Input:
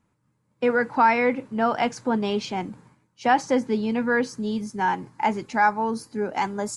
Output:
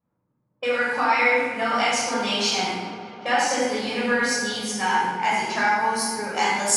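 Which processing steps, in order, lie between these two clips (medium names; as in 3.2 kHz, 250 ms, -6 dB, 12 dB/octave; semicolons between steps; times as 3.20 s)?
compression, threshold -22 dBFS, peak gain reduction 9 dB; level-controlled noise filter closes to 550 Hz, open at -26.5 dBFS; tilt EQ +4.5 dB/octave; on a send: filtered feedback delay 199 ms, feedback 85%, low-pass 3.5 kHz, level -17 dB; on the sum: simulated room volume 950 m³, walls mixed, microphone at 5.9 m; trim -4.5 dB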